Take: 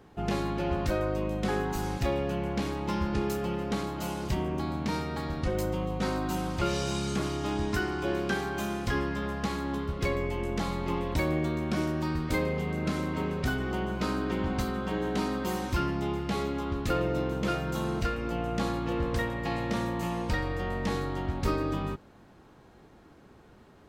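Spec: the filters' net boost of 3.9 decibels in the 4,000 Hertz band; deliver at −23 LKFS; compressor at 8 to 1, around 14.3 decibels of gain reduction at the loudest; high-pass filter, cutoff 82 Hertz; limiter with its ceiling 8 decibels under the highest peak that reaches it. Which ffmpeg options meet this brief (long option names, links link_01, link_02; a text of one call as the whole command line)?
ffmpeg -i in.wav -af "highpass=82,equalizer=frequency=4000:width_type=o:gain=5,acompressor=threshold=-40dB:ratio=8,volume=21.5dB,alimiter=limit=-13.5dB:level=0:latency=1" out.wav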